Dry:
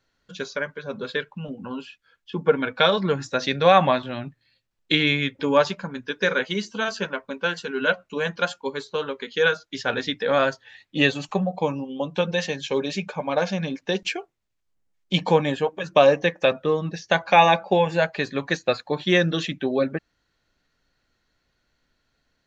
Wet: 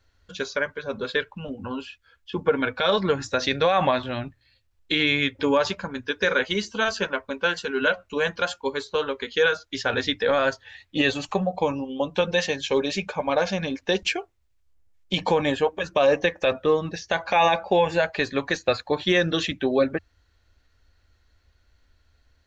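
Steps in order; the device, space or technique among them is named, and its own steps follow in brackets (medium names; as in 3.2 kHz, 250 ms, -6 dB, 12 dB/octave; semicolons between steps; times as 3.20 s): car stereo with a boomy subwoofer (resonant low shelf 110 Hz +9.5 dB, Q 3; peak limiter -12.5 dBFS, peak gain reduction 10 dB); trim +2.5 dB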